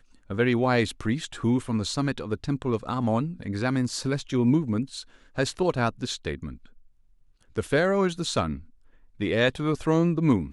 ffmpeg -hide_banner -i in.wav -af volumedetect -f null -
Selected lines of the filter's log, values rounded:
mean_volume: -26.4 dB
max_volume: -8.8 dB